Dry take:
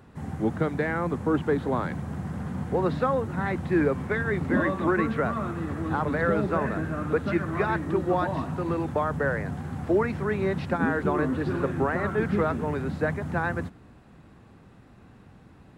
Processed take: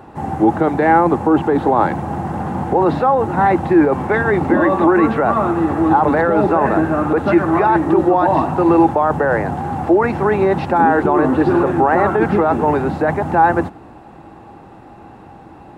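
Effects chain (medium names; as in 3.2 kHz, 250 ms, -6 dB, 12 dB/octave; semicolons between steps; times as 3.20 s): peaking EQ 770 Hz +11.5 dB 1.6 oct; in parallel at +1 dB: compressor with a negative ratio -21 dBFS, ratio -0.5; on the sum: small resonant body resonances 330/820/2700 Hz, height 9 dB, ringing for 45 ms; trim -1.5 dB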